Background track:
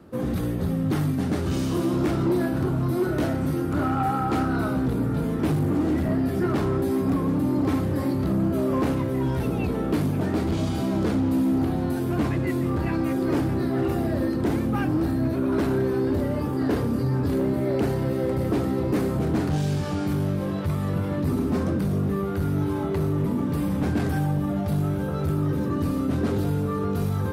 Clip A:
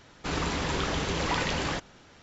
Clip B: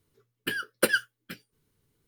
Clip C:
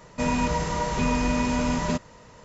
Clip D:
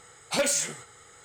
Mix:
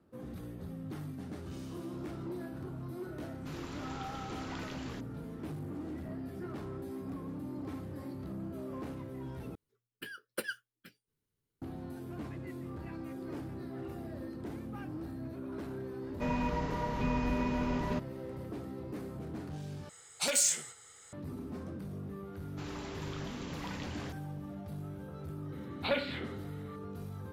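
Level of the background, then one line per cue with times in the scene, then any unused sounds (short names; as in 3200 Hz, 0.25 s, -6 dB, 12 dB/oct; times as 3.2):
background track -18 dB
3.21 add A -17 dB
9.55 replace with B -14 dB
16.02 add C -8 dB + air absorption 190 m
19.89 replace with D -10 dB + high shelf 2700 Hz +10.5 dB
22.33 add A -15.5 dB
25.52 add D -4.5 dB + elliptic low-pass 4000 Hz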